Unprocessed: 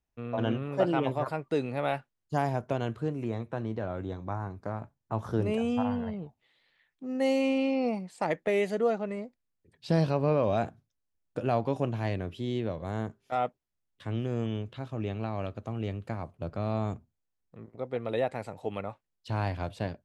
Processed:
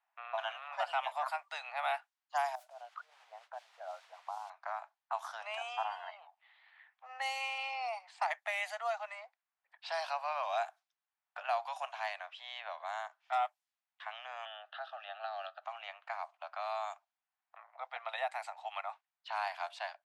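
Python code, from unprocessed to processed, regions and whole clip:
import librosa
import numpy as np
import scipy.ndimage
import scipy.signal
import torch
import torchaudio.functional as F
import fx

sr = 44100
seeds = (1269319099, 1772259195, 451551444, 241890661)

y = fx.chain(x, sr, fx.envelope_sharpen(power=2.0),
    fx.over_compress(threshold_db=-38.0, ratio=-1.0),
    fx.mod_noise(seeds[0], snr_db=25), at=(2.55, 4.5))
y = fx.chain(y, sr, fx.fixed_phaser(hz=1500.0, stages=8),
    fx.band_squash(depth_pct=70), at=(14.45, 15.63))
y = scipy.signal.sosfilt(scipy.signal.butter(12, 690.0, 'highpass', fs=sr, output='sos'), y)
y = fx.env_lowpass(y, sr, base_hz=1800.0, full_db=-35.0)
y = fx.band_squash(y, sr, depth_pct=40)
y = y * librosa.db_to_amplitude(1.0)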